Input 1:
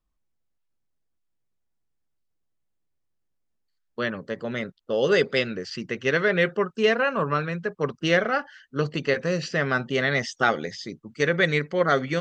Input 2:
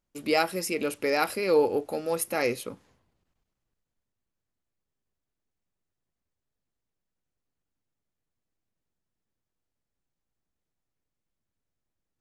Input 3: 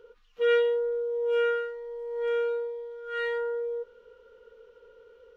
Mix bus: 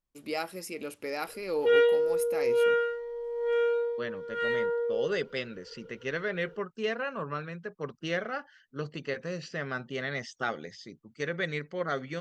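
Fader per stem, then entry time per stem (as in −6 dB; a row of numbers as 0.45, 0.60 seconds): −10.5, −9.0, +1.0 decibels; 0.00, 0.00, 1.25 seconds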